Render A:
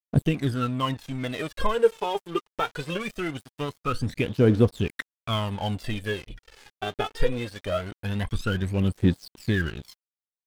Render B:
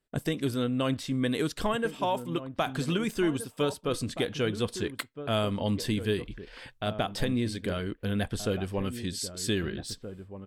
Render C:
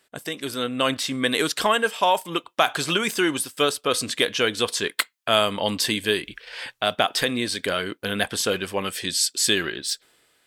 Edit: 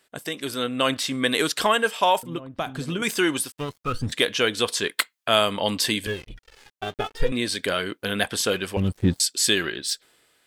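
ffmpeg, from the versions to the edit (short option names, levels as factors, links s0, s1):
-filter_complex "[0:a]asplit=3[s0][s1][s2];[2:a]asplit=5[s3][s4][s5][s6][s7];[s3]atrim=end=2.232[s8];[1:a]atrim=start=2.228:end=3.022[s9];[s4]atrim=start=3.018:end=3.522[s10];[s0]atrim=start=3.518:end=4.122[s11];[s5]atrim=start=4.118:end=6.072[s12];[s1]atrim=start=6.068:end=7.322[s13];[s6]atrim=start=7.318:end=8.772[s14];[s2]atrim=start=8.768:end=9.202[s15];[s7]atrim=start=9.198[s16];[s8][s9]acrossfade=d=0.004:c1=hsin:c2=hsin[s17];[s17][s10]acrossfade=d=0.004:c1=hsin:c2=hsin[s18];[s18][s11]acrossfade=d=0.004:c1=hsin:c2=hsin[s19];[s19][s12]acrossfade=d=0.004:c1=hsin:c2=hsin[s20];[s20][s13]acrossfade=d=0.004:c1=hsin:c2=hsin[s21];[s21][s14]acrossfade=d=0.004:c1=hsin:c2=hsin[s22];[s22][s15]acrossfade=d=0.004:c1=hsin:c2=hsin[s23];[s23][s16]acrossfade=d=0.004:c1=hsin:c2=hsin"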